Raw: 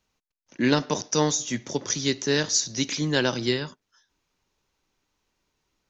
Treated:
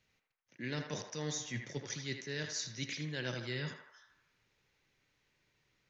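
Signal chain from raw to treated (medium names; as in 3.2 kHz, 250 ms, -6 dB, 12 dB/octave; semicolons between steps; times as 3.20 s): graphic EQ 125/500/1000/2000/4000 Hz +12/+5/-4/+12/+4 dB; reverse; compression 6:1, threshold -31 dBFS, peak gain reduction 18.5 dB; reverse; band-passed feedback delay 80 ms, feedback 62%, band-pass 1.1 kHz, level -4 dB; trim -7 dB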